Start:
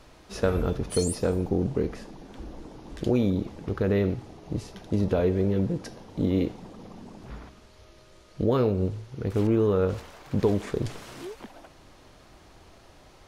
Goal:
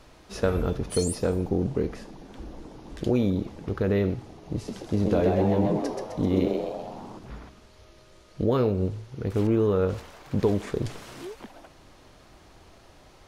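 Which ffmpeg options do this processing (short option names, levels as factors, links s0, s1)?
-filter_complex "[0:a]asettb=1/sr,asplit=3[s0][s1][s2];[s0]atrim=end=4.554[s3];[s1]atrim=start=4.55:end=7.19,asetpts=PTS-STARTPTS,afade=t=in:d=0.004:c=qsin,afade=t=out:st=2.636:d=0.004:c=qsin,asplit=8[s4][s5][s6][s7][s8][s9][s10][s11];[s5]adelay=129,afreqshift=110,volume=0.631[s12];[s6]adelay=258,afreqshift=220,volume=0.347[s13];[s7]adelay=387,afreqshift=330,volume=0.191[s14];[s8]adelay=516,afreqshift=440,volume=0.105[s15];[s9]adelay=645,afreqshift=550,volume=0.0575[s16];[s10]adelay=774,afreqshift=660,volume=0.0316[s17];[s11]adelay=903,afreqshift=770,volume=0.0174[s18];[s4][s12][s13][s14][s15][s16][s17][s18]amix=inputs=8:normalize=0,atrim=end_sample=116424[s19];[s2]atrim=start=7.186[s20];[s3][s19]acrossfade=d=0.004:c1=hsin:c2=qsin[s21];[s21][s20]acrossfade=d=0.004:c1=qsin:c2=hsin"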